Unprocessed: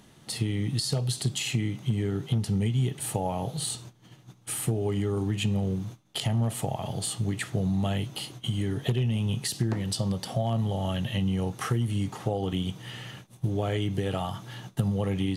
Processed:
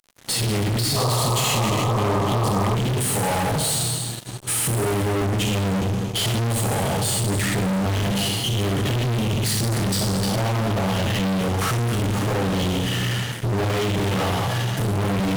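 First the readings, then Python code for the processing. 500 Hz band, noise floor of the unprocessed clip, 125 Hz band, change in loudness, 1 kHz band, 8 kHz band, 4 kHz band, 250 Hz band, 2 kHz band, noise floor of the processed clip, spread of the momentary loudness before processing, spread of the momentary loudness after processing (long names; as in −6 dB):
+8.5 dB, −55 dBFS, +5.5 dB, +7.0 dB, +12.0 dB, +10.5 dB, +9.5 dB, +6.0 dB, +12.0 dB, −29 dBFS, 7 LU, 3 LU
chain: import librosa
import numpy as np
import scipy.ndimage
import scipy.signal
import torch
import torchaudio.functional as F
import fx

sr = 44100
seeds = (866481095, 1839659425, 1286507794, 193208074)

y = fx.rev_plate(x, sr, seeds[0], rt60_s=1.3, hf_ratio=0.95, predelay_ms=0, drr_db=-3.0)
y = fx.fuzz(y, sr, gain_db=38.0, gate_db=-45.0)
y = fx.spec_paint(y, sr, seeds[1], shape='noise', start_s=0.96, length_s=1.79, low_hz=390.0, high_hz=1300.0, level_db=-19.0)
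y = F.gain(torch.from_numpy(y), -7.5).numpy()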